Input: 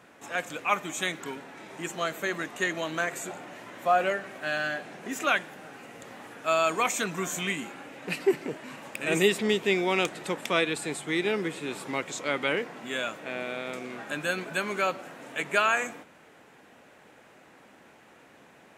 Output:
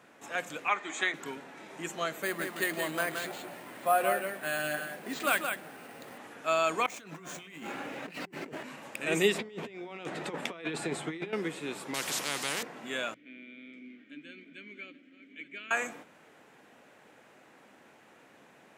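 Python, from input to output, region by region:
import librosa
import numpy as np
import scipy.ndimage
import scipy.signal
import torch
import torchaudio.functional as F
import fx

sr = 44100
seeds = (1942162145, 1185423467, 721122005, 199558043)

y = fx.chain(x, sr, fx.cabinet(low_hz=260.0, low_slope=24, high_hz=6700.0, hz=(290.0, 550.0, 1900.0, 2800.0, 5700.0), db=(-4, -7, 6, -4, -9)),
    fx.band_squash(depth_pct=70), at=(0.68, 1.14))
y = fx.chain(y, sr, fx.echo_single(ms=172, db=-6.0),
    fx.resample_bad(factor=4, down='none', up='hold'), at=(2.22, 6.18))
y = fx.chain(y, sr, fx.median_filter(points=5),
    fx.over_compress(threshold_db=-42.0, ratio=-1.0), at=(6.86, 8.63))
y = fx.chain(y, sr, fx.lowpass(hz=2600.0, slope=6),
    fx.over_compress(threshold_db=-33.0, ratio=-0.5),
    fx.doubler(ms=12.0, db=-11.5), at=(9.34, 11.33))
y = fx.chain(y, sr, fx.highpass(hz=160.0, slope=12),
    fx.spectral_comp(ratio=4.0), at=(11.94, 12.63))
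y = fx.chain(y, sr, fx.reverse_delay(ms=469, wet_db=-14),
    fx.vowel_filter(vowel='i'),
    fx.high_shelf(hz=6000.0, db=-4.5), at=(13.14, 15.71))
y = scipy.signal.sosfilt(scipy.signal.butter(2, 98.0, 'highpass', fs=sr, output='sos'), y)
y = fx.hum_notches(y, sr, base_hz=60, count=3)
y = y * 10.0 ** (-3.0 / 20.0)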